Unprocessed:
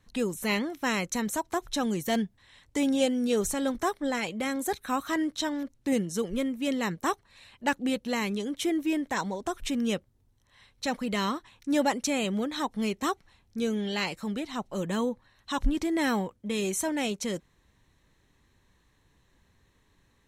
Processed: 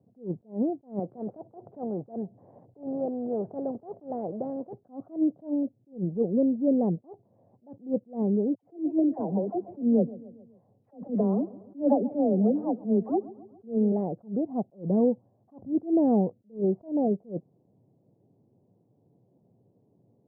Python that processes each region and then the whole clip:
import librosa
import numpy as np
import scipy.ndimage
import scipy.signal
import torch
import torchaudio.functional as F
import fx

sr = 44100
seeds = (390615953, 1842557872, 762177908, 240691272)

y = fx.chain(x, sr, fx.highpass(hz=62.0, slope=12),
    fx.low_shelf(hz=290.0, db=-8.5),
    fx.spectral_comp(ratio=2.0), at=(0.99, 4.73))
y = fx.chain(y, sr, fx.dispersion(late='lows', ms=82.0, hz=900.0),
    fx.echo_feedback(ms=138, feedback_pct=53, wet_db=-19.0), at=(8.55, 13.92))
y = scipy.signal.sosfilt(scipy.signal.cheby1(4, 1.0, [110.0, 720.0], 'bandpass', fs=sr, output='sos'), y)
y = fx.attack_slew(y, sr, db_per_s=220.0)
y = y * librosa.db_to_amplitude(7.0)